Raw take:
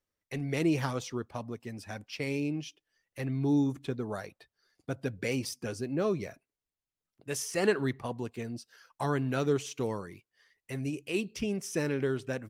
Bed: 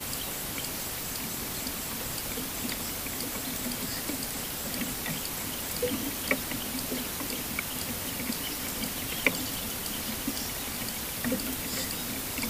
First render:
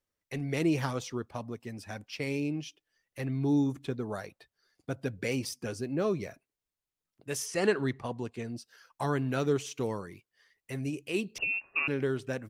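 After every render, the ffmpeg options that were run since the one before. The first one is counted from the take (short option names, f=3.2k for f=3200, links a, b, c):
-filter_complex "[0:a]asettb=1/sr,asplit=3[a][b][c];[a]atrim=end=7.464[d];[b]atrim=start=7.46:end=8.49,asetpts=PTS-STARTPTS,afade=t=in:d=0.004:c=qsin,afade=t=out:st=1.026:d=0.004:c=qsin,lowpass=9.5k[e];[c]atrim=start=8.486[f];[d][e]acrossfade=d=0.004:c1=hsin:c2=qsin[g];[g][f]acrossfade=d=0.004:c1=qsin:c2=hsin,asettb=1/sr,asplit=3[h][i][j];[h]atrim=end=11.384[k];[i]atrim=start=11.38:end=11.88,asetpts=PTS-STARTPTS,afade=t=in:d=0.004:c=qsin,afade=t=out:st=0.496:d=0.004:c=qsin,lowpass=f=2.5k:t=q:w=0.5098,lowpass=f=2.5k:t=q:w=0.6013,lowpass=f=2.5k:t=q:w=0.9,lowpass=f=2.5k:t=q:w=2.563,afreqshift=-2900[l];[j]atrim=start=11.876[m];[k][l]acrossfade=d=0.004:c1=hsin:c2=qsin[n];[n][m]acrossfade=d=0.004:c1=qsin:c2=hsin"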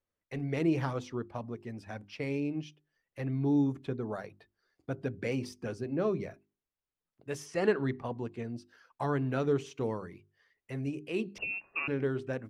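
-af "lowpass=f=1.8k:p=1,bandreject=f=50:t=h:w=6,bandreject=f=100:t=h:w=6,bandreject=f=150:t=h:w=6,bandreject=f=200:t=h:w=6,bandreject=f=250:t=h:w=6,bandreject=f=300:t=h:w=6,bandreject=f=350:t=h:w=6,bandreject=f=400:t=h:w=6"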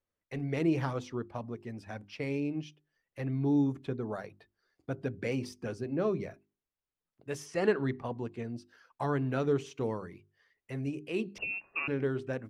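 -af anull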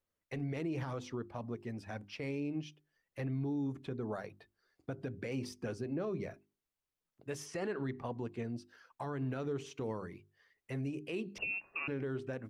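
-af "acompressor=threshold=-36dB:ratio=1.5,alimiter=level_in=5dB:limit=-24dB:level=0:latency=1:release=71,volume=-5dB"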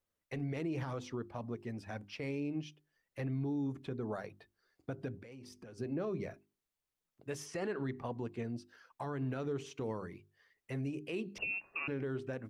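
-filter_complex "[0:a]asettb=1/sr,asplit=3[a][b][c];[a]atrim=end=5.164[d];[b]atrim=start=5.16:end=5.78,asetpts=PTS-STARTPTS,afade=t=in:d=0.004:c=qsin,afade=t=out:st=0.616:d=0.004:c=qsin,acompressor=threshold=-49dB:ratio=6:attack=3.2:release=140:knee=1:detection=peak[e];[c]atrim=start=5.776[f];[d][e]acrossfade=d=0.004:c1=hsin:c2=qsin[g];[g][f]acrossfade=d=0.004:c1=qsin:c2=hsin"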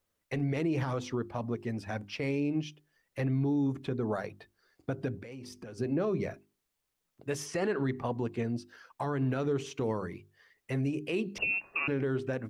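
-af "volume=7dB"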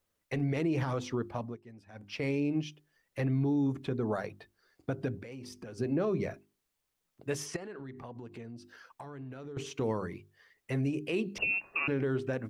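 -filter_complex "[0:a]asettb=1/sr,asplit=3[a][b][c];[a]atrim=end=7.564[d];[b]atrim=start=7.56:end=9.57,asetpts=PTS-STARTPTS,afade=t=in:d=0.004:c=qsin,afade=t=out:st=2.006:d=0.004:c=qsin,acompressor=threshold=-43dB:ratio=4:attack=3.2:release=140:knee=1:detection=peak[e];[c]atrim=start=9.566[f];[d][e]acrossfade=d=0.004:c1=hsin:c2=qsin[g];[g][f]acrossfade=d=0.004:c1=qsin:c2=hsin,asplit=3[h][i][j];[h]atrim=end=1.6,asetpts=PTS-STARTPTS,afade=t=out:st=1.35:d=0.25:silence=0.149624[k];[i]atrim=start=1.6:end=1.93,asetpts=PTS-STARTPTS,volume=-16.5dB[l];[j]atrim=start=1.93,asetpts=PTS-STARTPTS,afade=t=in:d=0.25:silence=0.149624[m];[k][l][m]concat=n=3:v=0:a=1"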